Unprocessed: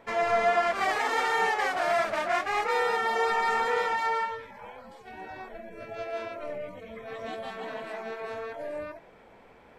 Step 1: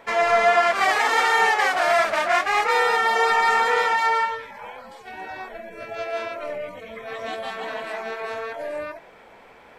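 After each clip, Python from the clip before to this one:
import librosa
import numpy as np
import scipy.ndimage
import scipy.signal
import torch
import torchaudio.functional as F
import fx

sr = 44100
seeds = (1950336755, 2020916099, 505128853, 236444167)

y = fx.low_shelf(x, sr, hz=460.0, db=-9.5)
y = F.gain(torch.from_numpy(y), 9.0).numpy()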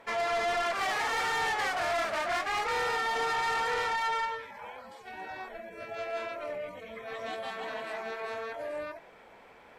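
y = fx.tube_stage(x, sr, drive_db=21.0, bias=0.2)
y = F.gain(torch.from_numpy(y), -5.5).numpy()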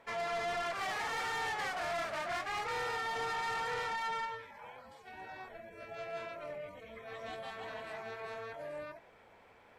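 y = fx.octave_divider(x, sr, octaves=2, level_db=-6.0)
y = F.gain(torch.from_numpy(y), -6.5).numpy()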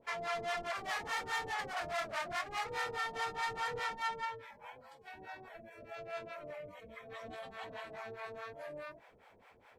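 y = fx.harmonic_tremolo(x, sr, hz=4.8, depth_pct=100, crossover_hz=570.0)
y = F.gain(torch.from_numpy(y), 3.0).numpy()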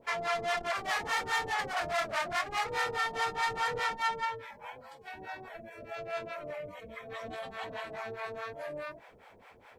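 y = fx.transformer_sat(x, sr, knee_hz=420.0)
y = F.gain(torch.from_numpy(y), 6.0).numpy()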